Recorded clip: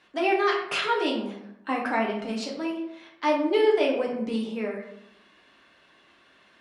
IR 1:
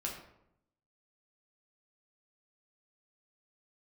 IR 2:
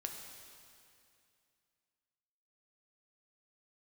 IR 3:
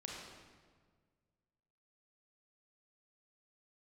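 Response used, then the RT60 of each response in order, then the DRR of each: 1; 0.80, 2.5, 1.6 seconds; −2.0, 2.0, −2.5 decibels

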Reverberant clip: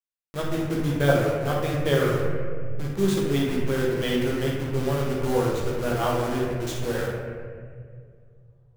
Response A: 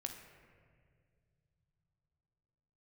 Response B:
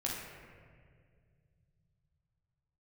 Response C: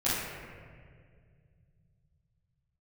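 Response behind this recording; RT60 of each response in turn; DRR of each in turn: B; non-exponential decay, 2.0 s, 2.0 s; 4.0, −4.5, −12.5 decibels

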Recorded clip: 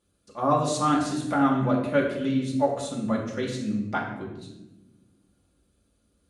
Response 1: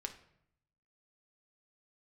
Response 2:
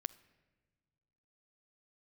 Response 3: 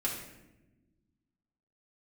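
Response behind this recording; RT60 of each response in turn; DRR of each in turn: 3; 0.70 s, non-exponential decay, 1.0 s; 4.5, 14.0, −4.5 decibels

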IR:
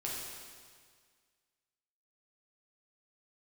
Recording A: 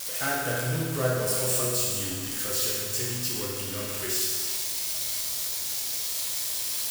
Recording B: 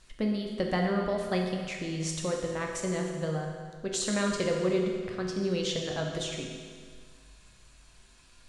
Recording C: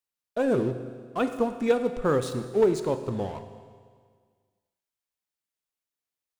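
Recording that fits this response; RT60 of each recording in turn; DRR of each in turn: A; 1.8, 1.8, 1.8 seconds; −5.0, 0.0, 8.0 decibels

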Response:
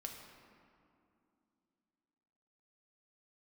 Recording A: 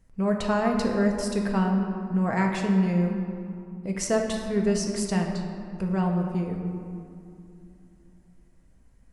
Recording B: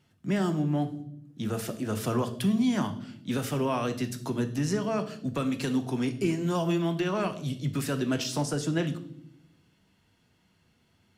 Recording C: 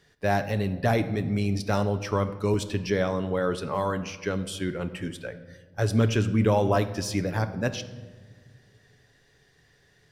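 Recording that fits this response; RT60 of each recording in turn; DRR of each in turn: A; 2.6 s, 0.70 s, non-exponential decay; 1.0, 7.0, 8.5 decibels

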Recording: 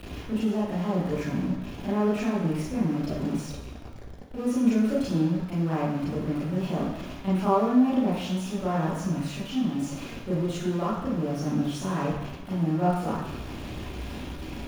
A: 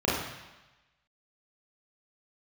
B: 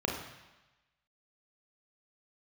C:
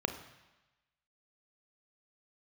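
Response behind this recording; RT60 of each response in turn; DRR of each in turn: A; 1.1, 1.1, 1.1 seconds; −8.5, −1.0, 7.0 decibels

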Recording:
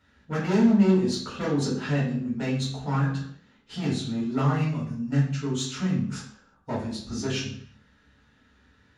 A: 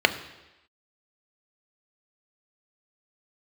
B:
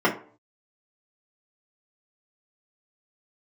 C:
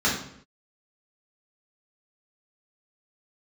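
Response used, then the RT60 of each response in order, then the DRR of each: C; 1.0, 0.45, 0.65 seconds; 8.5, −5.0, −7.0 decibels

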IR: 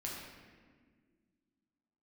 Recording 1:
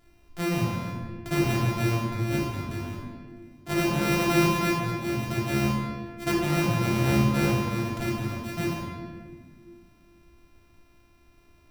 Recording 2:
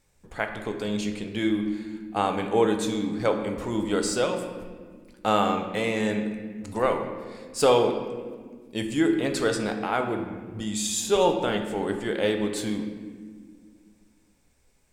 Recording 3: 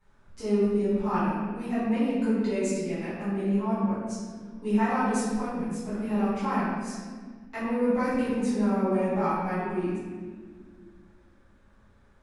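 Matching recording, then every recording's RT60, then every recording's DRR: 1; 1.7 s, non-exponential decay, 1.7 s; −4.5, 4.5, −14.5 decibels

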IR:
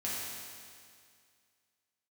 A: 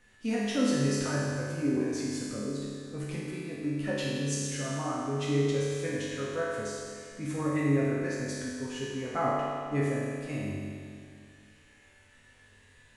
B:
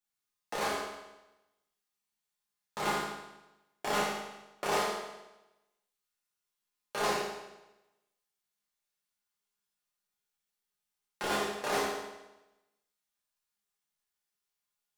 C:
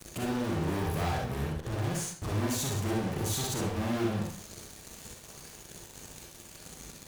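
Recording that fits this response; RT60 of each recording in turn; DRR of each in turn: A; 2.2, 1.0, 0.50 seconds; −8.0, −8.0, −2.5 decibels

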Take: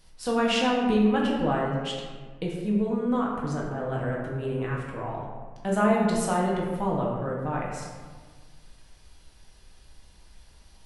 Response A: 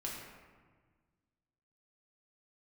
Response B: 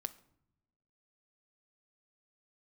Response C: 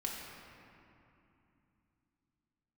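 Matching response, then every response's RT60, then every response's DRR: A; 1.5, 0.75, 2.8 seconds; −4.0, 10.5, −3.0 decibels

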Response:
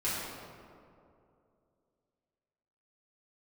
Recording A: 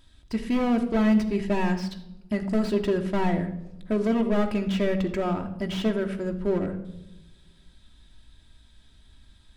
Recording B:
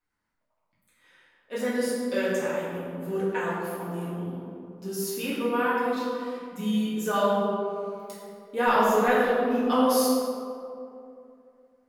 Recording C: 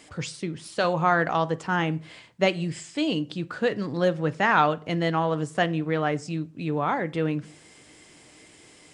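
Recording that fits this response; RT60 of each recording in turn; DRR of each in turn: B; 0.90, 2.6, 0.50 seconds; 3.5, −10.5, 14.5 decibels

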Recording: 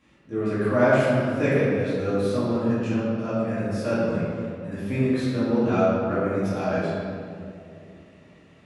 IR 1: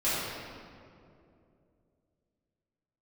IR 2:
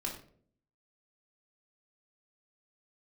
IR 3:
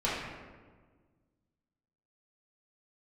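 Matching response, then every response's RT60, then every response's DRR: 1; 2.6, 0.55, 1.5 seconds; −12.5, −3.0, −10.0 decibels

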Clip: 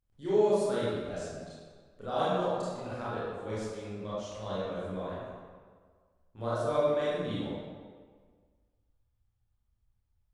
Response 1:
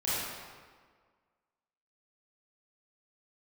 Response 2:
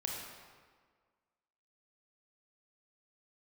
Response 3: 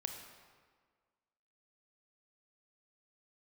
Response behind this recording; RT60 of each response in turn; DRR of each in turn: 1; 1.7, 1.7, 1.7 seconds; −11.0, −1.5, 4.0 decibels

